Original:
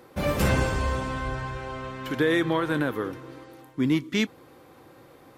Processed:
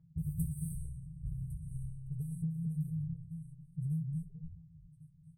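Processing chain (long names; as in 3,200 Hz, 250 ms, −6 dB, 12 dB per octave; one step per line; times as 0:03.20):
adaptive Wiener filter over 9 samples
0:00.51–0:01.24: bass and treble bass −13 dB, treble +6 dB
echo with shifted repeats 314 ms, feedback 36%, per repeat −130 Hz, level −23 dB
brick-wall band-stop 180–8,000 Hz
low-pass that shuts in the quiet parts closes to 1,700 Hz, open at −30.5 dBFS
tuned comb filter 160 Hz, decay 0.16 s, harmonics all, mix 90%
downward compressor 6 to 1, threshold −43 dBFS, peak gain reduction 12.5 dB
0:01.74–0:02.44: comb filter 2.5 ms, depth 81%
echo through a band-pass that steps 221 ms, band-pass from 170 Hz, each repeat 1.4 octaves, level −2 dB
level +9.5 dB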